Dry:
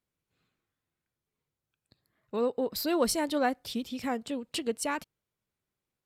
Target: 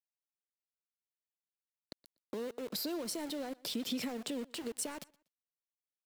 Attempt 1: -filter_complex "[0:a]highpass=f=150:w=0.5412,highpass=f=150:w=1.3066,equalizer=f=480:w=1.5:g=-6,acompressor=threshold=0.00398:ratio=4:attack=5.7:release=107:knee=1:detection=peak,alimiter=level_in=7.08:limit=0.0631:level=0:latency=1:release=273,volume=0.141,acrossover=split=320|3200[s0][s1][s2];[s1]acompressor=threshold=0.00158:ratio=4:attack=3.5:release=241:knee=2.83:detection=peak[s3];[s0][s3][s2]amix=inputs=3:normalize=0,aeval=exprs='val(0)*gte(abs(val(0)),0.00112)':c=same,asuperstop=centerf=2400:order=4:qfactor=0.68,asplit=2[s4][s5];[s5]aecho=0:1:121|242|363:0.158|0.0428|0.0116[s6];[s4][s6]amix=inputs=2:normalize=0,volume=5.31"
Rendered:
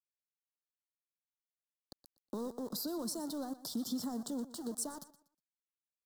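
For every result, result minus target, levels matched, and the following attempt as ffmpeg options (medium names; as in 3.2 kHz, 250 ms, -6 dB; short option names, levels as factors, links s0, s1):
2 kHz band -12.5 dB; echo-to-direct +8 dB; 500 Hz band -2.5 dB
-filter_complex "[0:a]highpass=f=150:w=0.5412,highpass=f=150:w=1.3066,equalizer=f=480:w=1.5:g=-6,acompressor=threshold=0.00398:ratio=4:attack=5.7:release=107:knee=1:detection=peak,alimiter=level_in=7.08:limit=0.0631:level=0:latency=1:release=273,volume=0.141,acrossover=split=320|3200[s0][s1][s2];[s1]acompressor=threshold=0.00158:ratio=4:attack=3.5:release=241:knee=2.83:detection=peak[s3];[s0][s3][s2]amix=inputs=3:normalize=0,aeval=exprs='val(0)*gte(abs(val(0)),0.00112)':c=same,asplit=2[s4][s5];[s5]aecho=0:1:121|242|363:0.158|0.0428|0.0116[s6];[s4][s6]amix=inputs=2:normalize=0,volume=5.31"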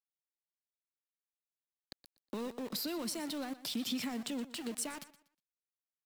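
echo-to-direct +8 dB; 500 Hz band -3.5 dB
-filter_complex "[0:a]highpass=f=150:w=0.5412,highpass=f=150:w=1.3066,equalizer=f=480:w=1.5:g=-6,acompressor=threshold=0.00398:ratio=4:attack=5.7:release=107:knee=1:detection=peak,alimiter=level_in=7.08:limit=0.0631:level=0:latency=1:release=273,volume=0.141,acrossover=split=320|3200[s0][s1][s2];[s1]acompressor=threshold=0.00158:ratio=4:attack=3.5:release=241:knee=2.83:detection=peak[s3];[s0][s3][s2]amix=inputs=3:normalize=0,aeval=exprs='val(0)*gte(abs(val(0)),0.00112)':c=same,asplit=2[s4][s5];[s5]aecho=0:1:121|242:0.0631|0.017[s6];[s4][s6]amix=inputs=2:normalize=0,volume=5.31"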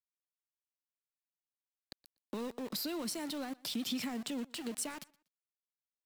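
500 Hz band -3.5 dB
-filter_complex "[0:a]highpass=f=150:w=0.5412,highpass=f=150:w=1.3066,equalizer=f=480:w=1.5:g=5,acompressor=threshold=0.00398:ratio=4:attack=5.7:release=107:knee=1:detection=peak,alimiter=level_in=7.08:limit=0.0631:level=0:latency=1:release=273,volume=0.141,acrossover=split=320|3200[s0][s1][s2];[s1]acompressor=threshold=0.00158:ratio=4:attack=3.5:release=241:knee=2.83:detection=peak[s3];[s0][s3][s2]amix=inputs=3:normalize=0,aeval=exprs='val(0)*gte(abs(val(0)),0.00112)':c=same,asplit=2[s4][s5];[s5]aecho=0:1:121|242:0.0631|0.017[s6];[s4][s6]amix=inputs=2:normalize=0,volume=5.31"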